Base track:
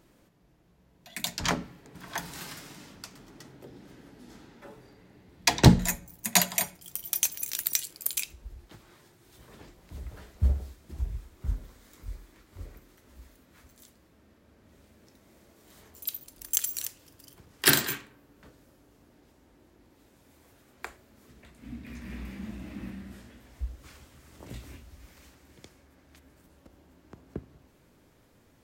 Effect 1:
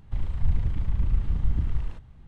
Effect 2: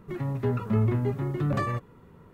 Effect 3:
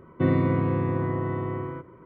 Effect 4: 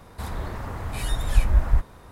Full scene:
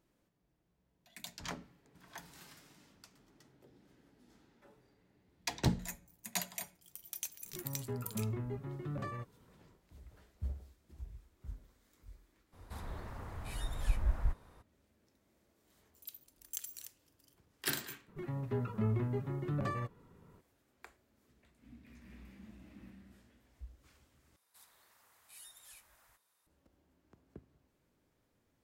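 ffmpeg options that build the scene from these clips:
ffmpeg -i bed.wav -i cue0.wav -i cue1.wav -i cue2.wav -i cue3.wav -filter_complex "[2:a]asplit=2[link_01][link_02];[4:a]asplit=2[link_03][link_04];[0:a]volume=-15dB[link_05];[link_04]aderivative[link_06];[link_05]asplit=2[link_07][link_08];[link_07]atrim=end=24.364[link_09];[link_06]atrim=end=2.11,asetpts=PTS-STARTPTS,volume=-15.5dB[link_10];[link_08]atrim=start=26.466[link_11];[link_01]atrim=end=2.33,asetpts=PTS-STARTPTS,volume=-13.5dB,afade=type=in:duration=0.004:curve=hsin,afade=type=out:start_time=2.326:duration=0.004:curve=hsin,adelay=7450[link_12];[link_03]atrim=end=2.11,asetpts=PTS-STARTPTS,volume=-13dB,afade=type=in:duration=0.02,afade=type=out:start_time=2.09:duration=0.02,adelay=552132S[link_13];[link_02]atrim=end=2.33,asetpts=PTS-STARTPTS,volume=-9dB,afade=type=in:duration=0.004:curve=hsin,afade=type=out:start_time=2.326:duration=0.004:curve=hsin,adelay=18080[link_14];[link_09][link_10]acrossfade=duration=0.004:curve1=hsin:curve2=hsin[link_15];[link_15][link_11]acrossfade=duration=0.004:curve1=hsin:curve2=hsin[link_16];[link_16][link_12][link_13][link_14]amix=inputs=4:normalize=0" out.wav

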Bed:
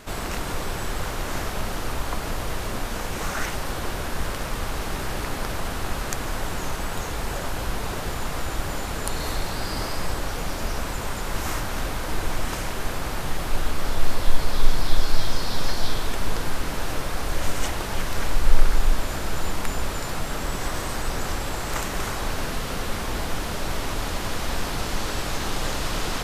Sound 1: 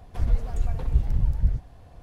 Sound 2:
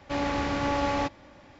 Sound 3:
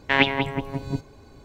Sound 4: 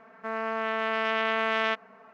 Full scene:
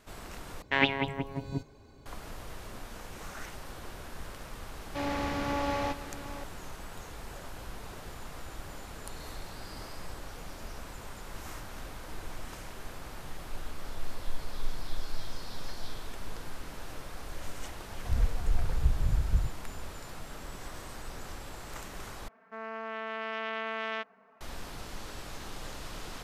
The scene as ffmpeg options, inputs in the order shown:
ffmpeg -i bed.wav -i cue0.wav -i cue1.wav -i cue2.wav -i cue3.wav -filter_complex "[0:a]volume=-15dB[link_01];[2:a]aecho=1:1:780:0.237[link_02];[link_01]asplit=3[link_03][link_04][link_05];[link_03]atrim=end=0.624[link_06];[3:a]atrim=end=1.44,asetpts=PTS-STARTPTS,volume=-6.5dB[link_07];[link_04]atrim=start=2.056:end=22.284[link_08];[4:a]atrim=end=2.13,asetpts=PTS-STARTPTS,volume=-8.5dB[link_09];[link_05]atrim=start=24.406[link_10];[link_02]atrim=end=1.59,asetpts=PTS-STARTPTS,volume=-4.5dB,afade=type=in:duration=0.004:curve=hsin,afade=type=out:start_time=1.586:duration=0.004:curve=hsin,adelay=213885S[link_11];[1:a]atrim=end=2.02,asetpts=PTS-STARTPTS,volume=-5dB,afade=type=in:duration=0.004:curve=hsin,afade=type=out:start_time=2.016:duration=0.004:curve=hsin,adelay=17900[link_12];[link_06][link_07]acrossfade=duration=0.004:curve1=hsin:curve2=hsin[link_13];[link_13][link_08]acrossfade=duration=0.004:curve1=hsin:curve2=hsin[link_14];[link_14][link_09]acrossfade=duration=0.004:curve1=hsin:curve2=hsin[link_15];[link_15][link_10]acrossfade=duration=0.004:curve1=hsin:curve2=hsin[link_16];[link_16][link_11][link_12]amix=inputs=3:normalize=0" out.wav

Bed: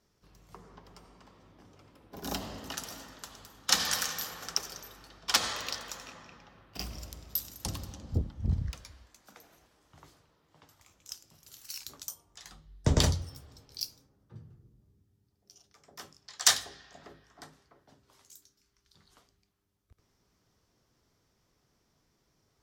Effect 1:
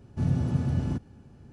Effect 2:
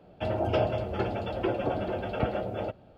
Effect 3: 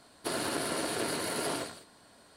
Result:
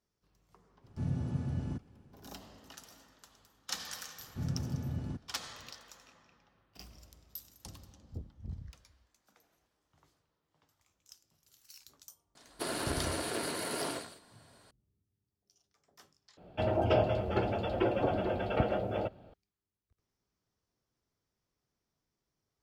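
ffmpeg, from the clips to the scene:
ffmpeg -i bed.wav -i cue0.wav -i cue1.wav -i cue2.wav -filter_complex "[1:a]asplit=2[link_01][link_02];[0:a]volume=-13dB,asplit=2[link_03][link_04];[link_03]atrim=end=16.374[link_05];[2:a]atrim=end=2.97,asetpts=PTS-STARTPTS,volume=-1dB[link_06];[link_04]atrim=start=19.336[link_07];[link_01]atrim=end=1.52,asetpts=PTS-STARTPTS,volume=-8.5dB,afade=type=in:duration=0.05,afade=type=out:start_time=1.47:duration=0.05,adelay=800[link_08];[link_02]atrim=end=1.52,asetpts=PTS-STARTPTS,volume=-10dB,afade=type=in:duration=0.004:curve=hsin,afade=type=out:start_time=1.516:duration=0.004:curve=hsin,adelay=4190[link_09];[3:a]atrim=end=2.36,asetpts=PTS-STARTPTS,volume=-3dB,afade=type=in:duration=0.004:curve=hsin,afade=type=out:start_time=2.356:duration=0.004:curve=hsin,adelay=12350[link_10];[link_05][link_06]acrossfade=duration=0.004:curve1=hsin:curve2=hsin[link_11];[link_11][link_07]acrossfade=duration=0.004:curve1=hsin:curve2=hsin[link_12];[link_12][link_08][link_09][link_10]amix=inputs=4:normalize=0" out.wav

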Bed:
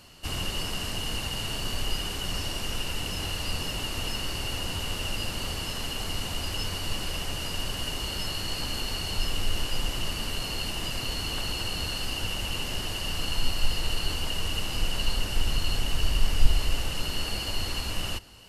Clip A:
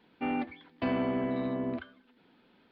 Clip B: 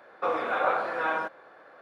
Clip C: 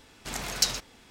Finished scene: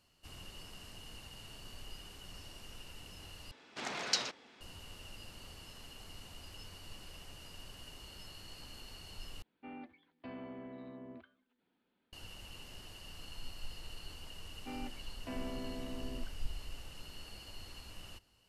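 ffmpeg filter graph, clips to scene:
ffmpeg -i bed.wav -i cue0.wav -i cue1.wav -i cue2.wav -filter_complex "[1:a]asplit=2[link_01][link_02];[0:a]volume=-19.5dB[link_03];[3:a]highpass=240,lowpass=4400[link_04];[link_03]asplit=3[link_05][link_06][link_07];[link_05]atrim=end=3.514[link_08];[link_04]atrim=end=1.1,asetpts=PTS-STARTPTS,volume=-3dB[link_09];[link_06]atrim=start=4.606:end=9.424[link_10];[link_01]atrim=end=2.71,asetpts=PTS-STARTPTS,volume=-17dB[link_11];[link_07]atrim=start=12.126[link_12];[link_02]atrim=end=2.71,asetpts=PTS-STARTPTS,volume=-13dB,afade=type=in:duration=0.004:curve=hsin,afade=type=out:start_time=2.706:duration=0.004:curve=hsin,adelay=14450[link_13];[link_08][link_09]acrossfade=duration=0.004:curve1=hsin:curve2=hsin[link_14];[link_14][link_10]acrossfade=duration=0.004:curve1=hsin:curve2=hsin[link_15];[link_15][link_11]acrossfade=duration=0.004:curve1=hsin:curve2=hsin[link_16];[link_16][link_12]acrossfade=duration=0.004:curve1=hsin:curve2=hsin[link_17];[link_17][link_13]amix=inputs=2:normalize=0" out.wav

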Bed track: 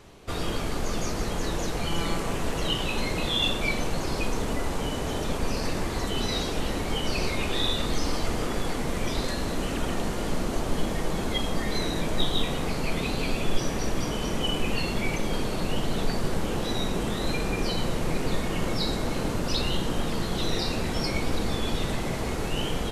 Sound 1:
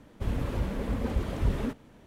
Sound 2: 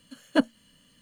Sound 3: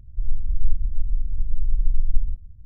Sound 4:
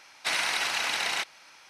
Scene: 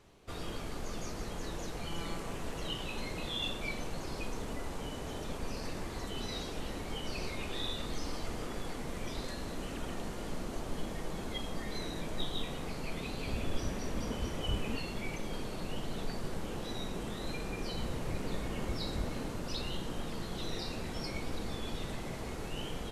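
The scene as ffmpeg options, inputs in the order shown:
ffmpeg -i bed.wav -i cue0.wav -filter_complex "[1:a]asplit=2[link_01][link_02];[0:a]volume=-11dB[link_03];[link_01]aresample=32000,aresample=44100,atrim=end=2.06,asetpts=PTS-STARTPTS,volume=-9dB,afade=type=in:duration=0.004:curve=hsin,afade=type=out:start_time=2.056:duration=0.004:curve=hsin,adelay=13060[link_04];[link_02]atrim=end=2.06,asetpts=PTS-STARTPTS,volume=-11.5dB,afade=type=in:duration=0.004:curve=hsin,afade=type=out:start_time=2.056:duration=0.004:curve=hsin,adelay=17530[link_05];[link_03][link_04][link_05]amix=inputs=3:normalize=0" out.wav

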